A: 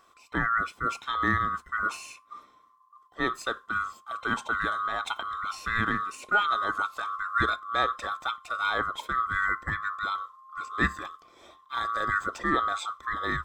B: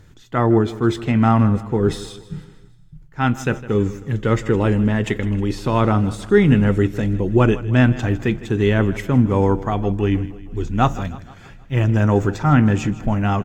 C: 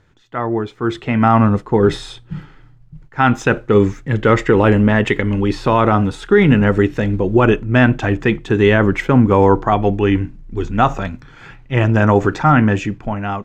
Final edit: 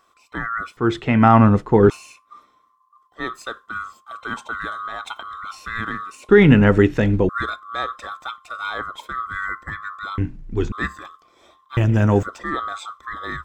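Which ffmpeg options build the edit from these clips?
-filter_complex "[2:a]asplit=3[s0][s1][s2];[0:a]asplit=5[s3][s4][s5][s6][s7];[s3]atrim=end=0.772[s8];[s0]atrim=start=0.768:end=1.902[s9];[s4]atrim=start=1.898:end=6.292[s10];[s1]atrim=start=6.288:end=7.292[s11];[s5]atrim=start=7.288:end=10.182[s12];[s2]atrim=start=10.178:end=10.722[s13];[s6]atrim=start=10.718:end=11.772[s14];[1:a]atrim=start=11.768:end=12.232[s15];[s7]atrim=start=12.228[s16];[s8][s9]acrossfade=d=0.004:c1=hsin:c2=hsin[s17];[s17][s10]acrossfade=d=0.004:c1=hsin:c2=hsin[s18];[s18][s11]acrossfade=d=0.004:c1=hsin:c2=hsin[s19];[s19][s12]acrossfade=d=0.004:c1=hsin:c2=hsin[s20];[s20][s13]acrossfade=d=0.004:c1=hsin:c2=hsin[s21];[s21][s14]acrossfade=d=0.004:c1=hsin:c2=hsin[s22];[s22][s15]acrossfade=d=0.004:c1=hsin:c2=hsin[s23];[s23][s16]acrossfade=d=0.004:c1=hsin:c2=hsin"

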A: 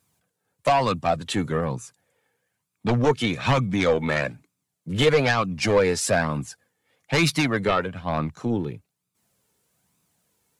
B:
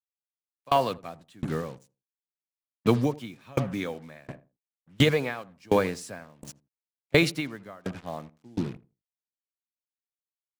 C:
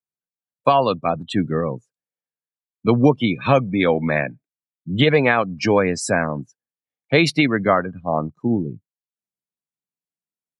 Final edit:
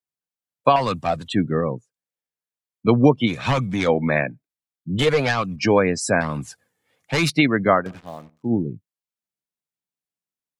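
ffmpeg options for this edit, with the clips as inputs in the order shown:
-filter_complex "[0:a]asplit=4[s0][s1][s2][s3];[2:a]asplit=6[s4][s5][s6][s7][s8][s9];[s4]atrim=end=0.762[s10];[s0]atrim=start=0.758:end=1.282[s11];[s5]atrim=start=1.278:end=3.3[s12];[s1]atrim=start=3.26:end=3.9[s13];[s6]atrim=start=3.86:end=4.992[s14];[s2]atrim=start=4.988:end=5.562[s15];[s7]atrim=start=5.558:end=6.212[s16];[s3]atrim=start=6.208:end=7.302[s17];[s8]atrim=start=7.298:end=7.92[s18];[1:a]atrim=start=7.76:end=8.54[s19];[s9]atrim=start=8.38[s20];[s10][s11]acrossfade=d=0.004:c1=hsin:c2=hsin[s21];[s21][s12]acrossfade=d=0.004:c1=hsin:c2=hsin[s22];[s22][s13]acrossfade=d=0.04:c1=tri:c2=tri[s23];[s23][s14]acrossfade=d=0.04:c1=tri:c2=tri[s24];[s24][s15]acrossfade=d=0.004:c1=hsin:c2=hsin[s25];[s25][s16]acrossfade=d=0.004:c1=hsin:c2=hsin[s26];[s26][s17]acrossfade=d=0.004:c1=hsin:c2=hsin[s27];[s27][s18]acrossfade=d=0.004:c1=hsin:c2=hsin[s28];[s28][s19]acrossfade=d=0.16:c1=tri:c2=tri[s29];[s29][s20]acrossfade=d=0.16:c1=tri:c2=tri"

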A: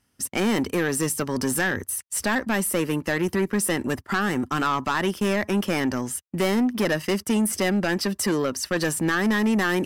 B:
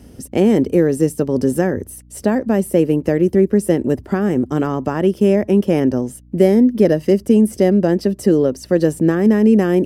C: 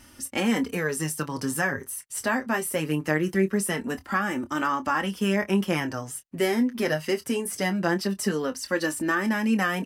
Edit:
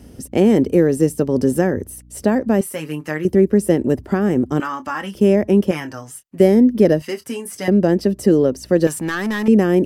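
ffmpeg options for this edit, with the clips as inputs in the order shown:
-filter_complex "[2:a]asplit=4[s0][s1][s2][s3];[1:a]asplit=6[s4][s5][s6][s7][s8][s9];[s4]atrim=end=2.612[s10];[s0]atrim=start=2.608:end=3.252[s11];[s5]atrim=start=3.248:end=4.602[s12];[s1]atrim=start=4.598:end=5.152[s13];[s6]atrim=start=5.148:end=5.712[s14];[s2]atrim=start=5.708:end=6.402[s15];[s7]atrim=start=6.398:end=7.022[s16];[s3]atrim=start=7.018:end=7.682[s17];[s8]atrim=start=7.678:end=8.872[s18];[0:a]atrim=start=8.868:end=9.482[s19];[s9]atrim=start=9.478[s20];[s10][s11]acrossfade=d=0.004:c1=hsin:c2=hsin[s21];[s21][s12]acrossfade=d=0.004:c1=hsin:c2=hsin[s22];[s22][s13]acrossfade=d=0.004:c1=hsin:c2=hsin[s23];[s23][s14]acrossfade=d=0.004:c1=hsin:c2=hsin[s24];[s24][s15]acrossfade=d=0.004:c1=hsin:c2=hsin[s25];[s25][s16]acrossfade=d=0.004:c1=hsin:c2=hsin[s26];[s26][s17]acrossfade=d=0.004:c1=hsin:c2=hsin[s27];[s27][s18]acrossfade=d=0.004:c1=hsin:c2=hsin[s28];[s28][s19]acrossfade=d=0.004:c1=hsin:c2=hsin[s29];[s29][s20]acrossfade=d=0.004:c1=hsin:c2=hsin"

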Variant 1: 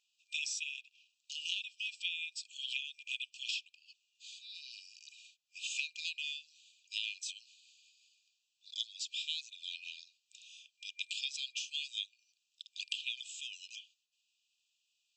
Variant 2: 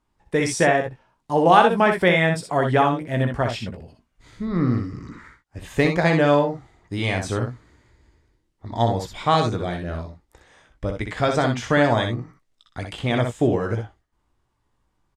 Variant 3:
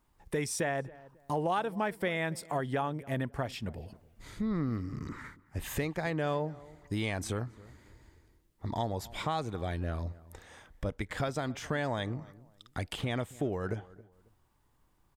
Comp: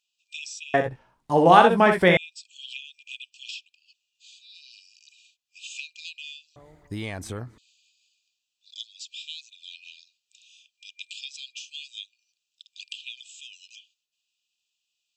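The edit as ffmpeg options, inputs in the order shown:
-filter_complex "[0:a]asplit=3[s0][s1][s2];[s0]atrim=end=0.742[s3];[1:a]atrim=start=0.738:end=2.172[s4];[s1]atrim=start=2.168:end=6.562[s5];[2:a]atrim=start=6.558:end=7.582[s6];[s2]atrim=start=7.578[s7];[s3][s4]acrossfade=d=0.004:c1=hsin:c2=hsin[s8];[s8][s5]acrossfade=d=0.004:c1=hsin:c2=hsin[s9];[s9][s6]acrossfade=d=0.004:c1=hsin:c2=hsin[s10];[s10][s7]acrossfade=d=0.004:c1=hsin:c2=hsin"

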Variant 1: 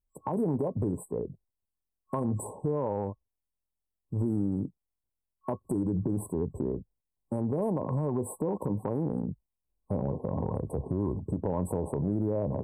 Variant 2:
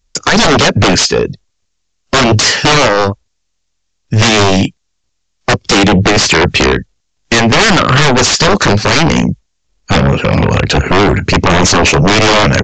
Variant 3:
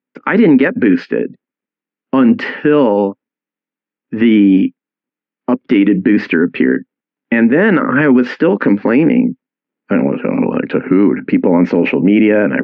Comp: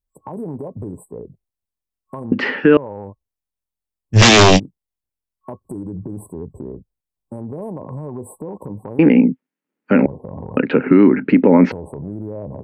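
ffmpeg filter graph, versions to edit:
-filter_complex "[2:a]asplit=3[s0][s1][s2];[0:a]asplit=5[s3][s4][s5][s6][s7];[s3]atrim=end=2.322[s8];[s0]atrim=start=2.318:end=2.772[s9];[s4]atrim=start=2.768:end=4.17[s10];[1:a]atrim=start=4.13:end=4.6[s11];[s5]atrim=start=4.56:end=8.992[s12];[s1]atrim=start=8.988:end=10.062[s13];[s6]atrim=start=10.058:end=10.572[s14];[s2]atrim=start=10.568:end=11.722[s15];[s7]atrim=start=11.718[s16];[s8][s9]acrossfade=d=0.004:c1=hsin:c2=hsin[s17];[s17][s10]acrossfade=d=0.004:c1=hsin:c2=hsin[s18];[s18][s11]acrossfade=d=0.04:c1=tri:c2=tri[s19];[s19][s12]acrossfade=d=0.04:c1=tri:c2=tri[s20];[s20][s13]acrossfade=d=0.004:c1=hsin:c2=hsin[s21];[s21][s14]acrossfade=d=0.004:c1=hsin:c2=hsin[s22];[s22][s15]acrossfade=d=0.004:c1=hsin:c2=hsin[s23];[s23][s16]acrossfade=d=0.004:c1=hsin:c2=hsin"

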